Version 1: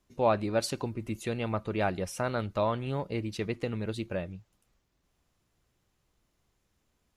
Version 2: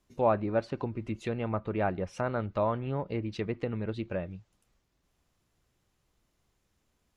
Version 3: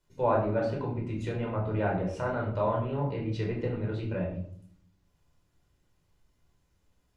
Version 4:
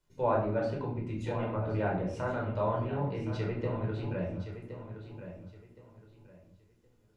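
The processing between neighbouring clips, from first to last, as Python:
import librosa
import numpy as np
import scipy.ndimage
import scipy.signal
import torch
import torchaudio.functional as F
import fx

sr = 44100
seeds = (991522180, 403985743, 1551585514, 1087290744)

y1 = fx.env_lowpass_down(x, sr, base_hz=1800.0, full_db=-28.0)
y2 = fx.room_shoebox(y1, sr, seeds[0], volume_m3=830.0, walls='furnished', distance_m=4.8)
y2 = y2 * 10.0 ** (-6.0 / 20.0)
y3 = fx.echo_feedback(y2, sr, ms=1068, feedback_pct=26, wet_db=-10.5)
y3 = y3 * 10.0 ** (-2.5 / 20.0)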